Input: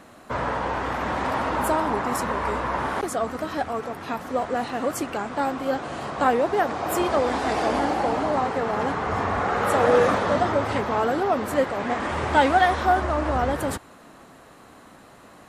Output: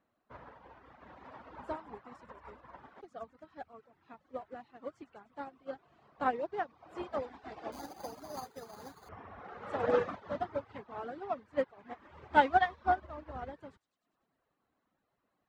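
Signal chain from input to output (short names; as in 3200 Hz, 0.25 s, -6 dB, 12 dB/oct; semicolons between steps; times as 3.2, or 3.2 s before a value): air absorption 150 m; thin delay 0.1 s, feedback 70%, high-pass 2900 Hz, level -7.5 dB; 7.72–9.09 careless resampling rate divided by 8×, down none, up hold; reverb removal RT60 0.89 s; upward expander 2.5:1, over -32 dBFS; gain -3.5 dB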